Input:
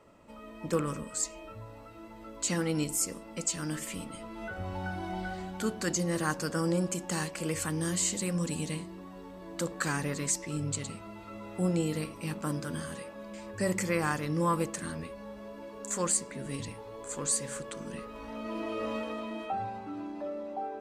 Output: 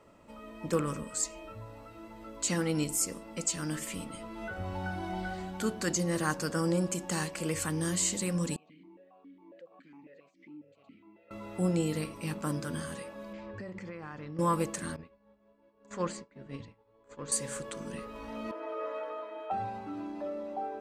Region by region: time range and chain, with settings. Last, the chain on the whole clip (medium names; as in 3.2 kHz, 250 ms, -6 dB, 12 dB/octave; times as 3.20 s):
8.56–11.31 s: compression 10:1, threshold -38 dBFS + distance through air 150 m + stepped vowel filter 7.3 Hz
13.33–14.39 s: compression 12:1, threshold -37 dBFS + distance through air 220 m
14.96–17.32 s: expander -32 dBFS + distance through air 200 m
18.51–19.51 s: high-pass 260 Hz + three-band isolator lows -18 dB, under 470 Hz, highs -19 dB, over 2.1 kHz + comb 6.6 ms, depth 71%
whole clip: none